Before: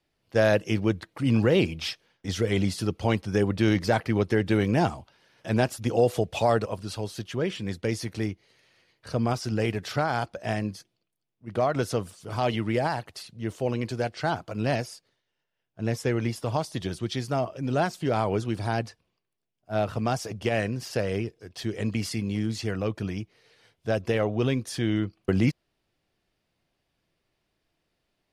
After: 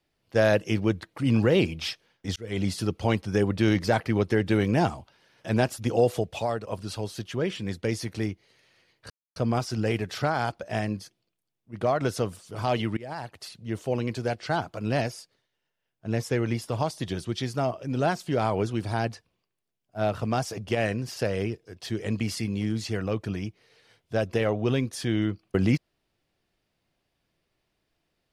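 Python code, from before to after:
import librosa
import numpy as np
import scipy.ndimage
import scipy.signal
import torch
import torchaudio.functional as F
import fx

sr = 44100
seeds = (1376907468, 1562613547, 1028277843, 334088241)

y = fx.edit(x, sr, fx.fade_in_span(start_s=2.36, length_s=0.34),
    fx.fade_out_to(start_s=6.04, length_s=0.63, floor_db=-10.5),
    fx.insert_silence(at_s=9.1, length_s=0.26),
    fx.fade_in_from(start_s=12.71, length_s=0.52, floor_db=-23.5), tone=tone)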